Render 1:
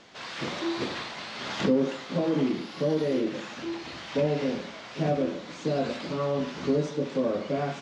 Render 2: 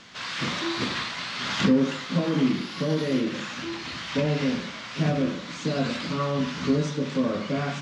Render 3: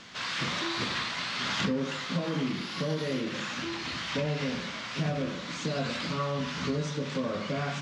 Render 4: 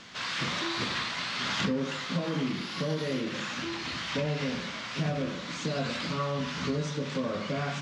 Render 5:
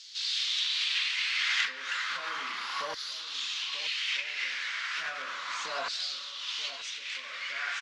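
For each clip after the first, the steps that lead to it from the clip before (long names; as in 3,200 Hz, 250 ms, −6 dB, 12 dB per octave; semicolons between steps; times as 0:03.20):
flat-topped bell 520 Hz −8 dB; hum removal 72.91 Hz, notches 37; level +6.5 dB
dynamic equaliser 280 Hz, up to −6 dB, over −36 dBFS, Q 1.3; downward compressor 2 to 1, threshold −29 dBFS, peak gain reduction 5.5 dB
no processing that can be heard
auto-filter high-pass saw down 0.34 Hz 930–4,600 Hz; slap from a distant wall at 160 metres, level −12 dB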